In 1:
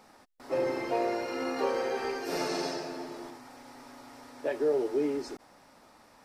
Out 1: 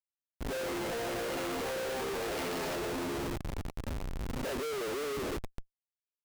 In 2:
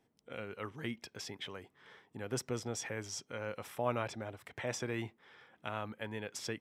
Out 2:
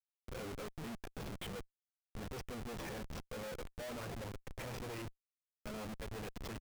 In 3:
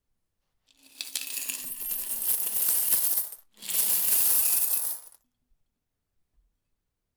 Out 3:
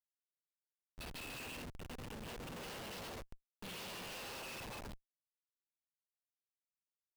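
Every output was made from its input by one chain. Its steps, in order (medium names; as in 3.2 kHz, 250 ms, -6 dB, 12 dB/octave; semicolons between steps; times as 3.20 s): chorus voices 2, 0.45 Hz, delay 11 ms, depth 3.5 ms; cabinet simulation 120–4900 Hz, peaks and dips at 180 Hz +8 dB, 480 Hz +6 dB, 2.7 kHz +6 dB; on a send: frequency-shifting echo 296 ms, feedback 54%, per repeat +87 Hz, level -23 dB; on the sum: Schmitt trigger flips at -44.5 dBFS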